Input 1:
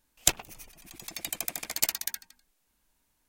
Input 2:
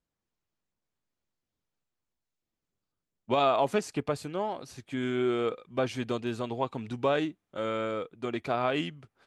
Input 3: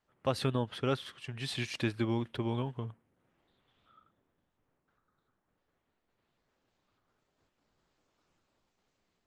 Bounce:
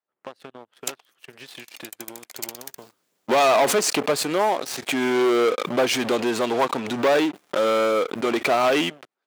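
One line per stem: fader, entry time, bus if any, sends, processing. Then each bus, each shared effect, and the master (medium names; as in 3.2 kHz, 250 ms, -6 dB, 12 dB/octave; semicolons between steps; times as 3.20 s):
-16.5 dB, 0.60 s, no send, none
-8.0 dB, 0.00 s, no send, waveshaping leveller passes 3; swell ahead of each attack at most 59 dB/s
-4.0 dB, 0.00 s, no send, treble shelf 3.4 kHz -5.5 dB; compression 8:1, threshold -40 dBFS, peak gain reduction 15.5 dB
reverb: none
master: waveshaping leveller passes 3; high-pass 320 Hz 12 dB/octave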